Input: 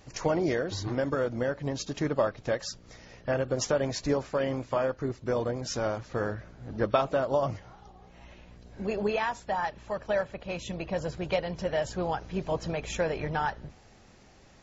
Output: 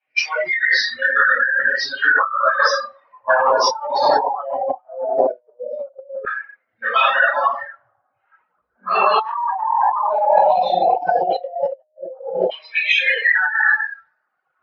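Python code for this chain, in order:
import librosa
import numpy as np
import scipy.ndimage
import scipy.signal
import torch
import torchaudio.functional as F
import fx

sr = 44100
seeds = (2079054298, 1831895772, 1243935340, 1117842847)

y = fx.spec_dropout(x, sr, seeds[0], share_pct=23)
y = fx.room_shoebox(y, sr, seeds[1], volume_m3=1000.0, walls='mixed', distance_m=7.8)
y = fx.filter_lfo_highpass(y, sr, shape='saw_down', hz=0.16, low_hz=520.0, high_hz=2400.0, q=7.1)
y = fx.peak_eq(y, sr, hz=700.0, db=5.0, octaves=1.6)
y = fx.over_compress(y, sr, threshold_db=-19.0, ratio=-1.0)
y = fx.dereverb_blind(y, sr, rt60_s=1.9)
y = scipy.signal.sosfilt(scipy.signal.butter(16, 5600.0, 'lowpass', fs=sr, output='sos'), y)
y = fx.noise_reduce_blind(y, sr, reduce_db=21)
y = fx.env_lowpass(y, sr, base_hz=730.0, full_db=-14.0)
y = fx.pre_swell(y, sr, db_per_s=28.0, at=(8.91, 10.42))
y = y * 10.0 ** (1.0 / 20.0)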